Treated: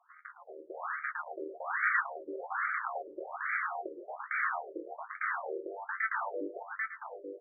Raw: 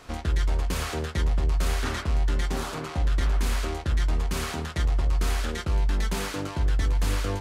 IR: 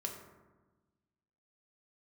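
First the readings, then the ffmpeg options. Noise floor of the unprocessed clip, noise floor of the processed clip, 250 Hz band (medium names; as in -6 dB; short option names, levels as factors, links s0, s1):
-37 dBFS, -57 dBFS, -13.5 dB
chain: -filter_complex "[0:a]equalizer=f=125:t=o:w=1:g=7,equalizer=f=250:t=o:w=1:g=-12,equalizer=f=500:t=o:w=1:g=-7,equalizer=f=1000:t=o:w=1:g=-7,equalizer=f=2000:t=o:w=1:g=4,equalizer=f=4000:t=o:w=1:g=8,dynaudnorm=f=340:g=5:m=3.76,asoftclip=type=tanh:threshold=0.631,adynamicsmooth=sensitivity=2.5:basefreq=650,asuperstop=centerf=3900:order=4:qfactor=0.63,asplit=2[s0][s1];[s1]adelay=110.8,volume=0.178,highshelf=f=4000:g=-2.49[s2];[s0][s2]amix=inputs=2:normalize=0,afftfilt=real='re*between(b*sr/1024,410*pow(1700/410,0.5+0.5*sin(2*PI*1.2*pts/sr))/1.41,410*pow(1700/410,0.5+0.5*sin(2*PI*1.2*pts/sr))*1.41)':imag='im*between(b*sr/1024,410*pow(1700/410,0.5+0.5*sin(2*PI*1.2*pts/sr))/1.41,410*pow(1700/410,0.5+0.5*sin(2*PI*1.2*pts/sr))*1.41)':win_size=1024:overlap=0.75"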